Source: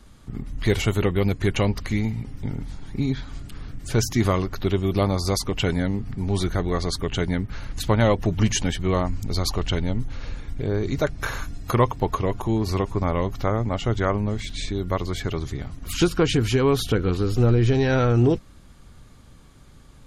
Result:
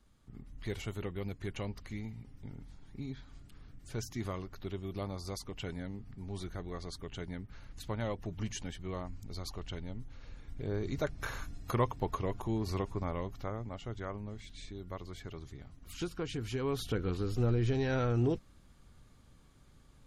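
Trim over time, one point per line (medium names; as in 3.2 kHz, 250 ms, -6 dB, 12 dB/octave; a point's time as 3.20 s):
10.26 s -17.5 dB
10.72 s -11 dB
12.80 s -11 dB
13.82 s -18 dB
16.30 s -18 dB
17.00 s -11.5 dB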